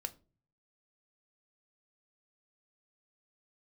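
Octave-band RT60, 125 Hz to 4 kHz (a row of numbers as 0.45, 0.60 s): 0.80, 0.55, 0.45, 0.30, 0.25, 0.25 s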